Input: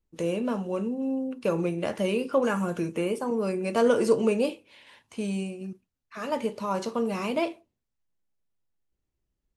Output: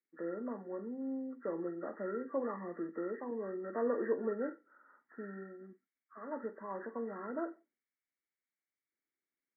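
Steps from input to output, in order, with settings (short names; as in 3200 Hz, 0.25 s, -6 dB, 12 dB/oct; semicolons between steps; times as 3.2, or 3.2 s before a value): nonlinear frequency compression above 1100 Hz 4:1; ladder high-pass 230 Hz, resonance 40%; gain -6 dB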